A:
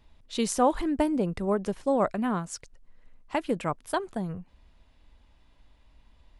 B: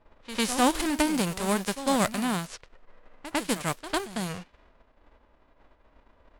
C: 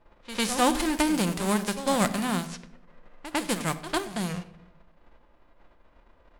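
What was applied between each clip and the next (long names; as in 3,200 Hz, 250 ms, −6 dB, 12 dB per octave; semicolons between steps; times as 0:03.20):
spectral envelope flattened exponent 0.3; low-pass that shuts in the quiet parts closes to 1,000 Hz, open at −26 dBFS; echo ahead of the sound 101 ms −13 dB
rectangular room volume 1,900 cubic metres, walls furnished, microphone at 0.86 metres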